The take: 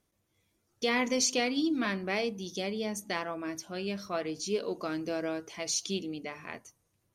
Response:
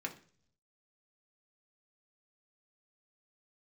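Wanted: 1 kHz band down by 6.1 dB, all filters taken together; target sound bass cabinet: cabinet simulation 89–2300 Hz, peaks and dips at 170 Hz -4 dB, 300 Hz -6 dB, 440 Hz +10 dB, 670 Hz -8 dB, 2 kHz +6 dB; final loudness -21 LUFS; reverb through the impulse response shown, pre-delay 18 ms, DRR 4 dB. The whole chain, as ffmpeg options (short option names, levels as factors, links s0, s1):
-filter_complex "[0:a]equalizer=f=1000:t=o:g=-5.5,asplit=2[s0][s1];[1:a]atrim=start_sample=2205,adelay=18[s2];[s1][s2]afir=irnorm=-1:irlink=0,volume=0.562[s3];[s0][s3]amix=inputs=2:normalize=0,highpass=f=89:w=0.5412,highpass=f=89:w=1.3066,equalizer=f=170:t=q:w=4:g=-4,equalizer=f=300:t=q:w=4:g=-6,equalizer=f=440:t=q:w=4:g=10,equalizer=f=670:t=q:w=4:g=-8,equalizer=f=2000:t=q:w=4:g=6,lowpass=f=2300:w=0.5412,lowpass=f=2300:w=1.3066,volume=3.35"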